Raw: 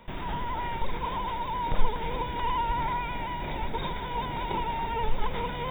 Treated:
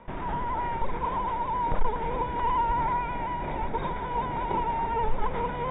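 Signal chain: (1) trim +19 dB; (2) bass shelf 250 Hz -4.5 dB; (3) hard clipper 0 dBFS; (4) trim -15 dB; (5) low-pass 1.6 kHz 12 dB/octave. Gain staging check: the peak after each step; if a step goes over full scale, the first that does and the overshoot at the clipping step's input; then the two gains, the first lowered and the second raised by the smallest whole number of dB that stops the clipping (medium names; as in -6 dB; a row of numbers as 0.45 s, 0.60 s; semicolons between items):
+9.5 dBFS, +5.5 dBFS, 0.0 dBFS, -15.0 dBFS, -15.0 dBFS; step 1, 5.5 dB; step 1 +13 dB, step 4 -9 dB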